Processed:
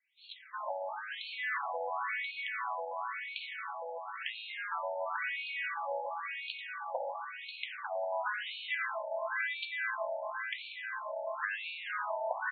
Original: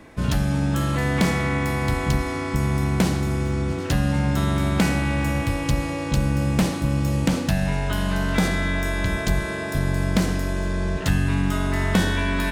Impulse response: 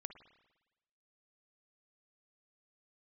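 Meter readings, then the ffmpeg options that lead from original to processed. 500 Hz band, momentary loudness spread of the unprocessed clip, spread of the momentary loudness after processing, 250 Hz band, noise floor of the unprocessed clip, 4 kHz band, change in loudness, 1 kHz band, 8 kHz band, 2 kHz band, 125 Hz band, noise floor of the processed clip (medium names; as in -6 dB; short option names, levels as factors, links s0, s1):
-10.5 dB, 4 LU, 6 LU, under -40 dB, -28 dBFS, -10.5 dB, -14.0 dB, -6.5 dB, under -40 dB, -7.5 dB, under -40 dB, -47 dBFS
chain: -filter_complex "[0:a]acrossover=split=4300[s0][s1];[s0]adelay=360[s2];[s2][s1]amix=inputs=2:normalize=0,acrossover=split=170[s3][s4];[s4]acompressor=threshold=0.0708:ratio=6[s5];[s3][s5]amix=inputs=2:normalize=0,afftfilt=real='re*between(b*sr/1024,670*pow(3200/670,0.5+0.5*sin(2*PI*0.96*pts/sr))/1.41,670*pow(3200/670,0.5+0.5*sin(2*PI*0.96*pts/sr))*1.41)':imag='im*between(b*sr/1024,670*pow(3200/670,0.5+0.5*sin(2*PI*0.96*pts/sr))/1.41,670*pow(3200/670,0.5+0.5*sin(2*PI*0.96*pts/sr))*1.41)':win_size=1024:overlap=0.75"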